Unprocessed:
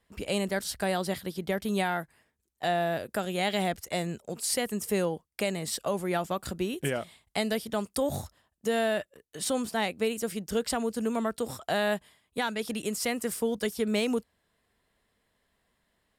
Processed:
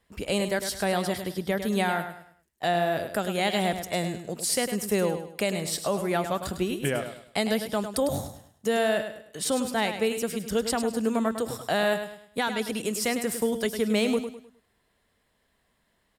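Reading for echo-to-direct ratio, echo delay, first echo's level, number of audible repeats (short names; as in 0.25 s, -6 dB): -8.5 dB, 0.103 s, -9.0 dB, 3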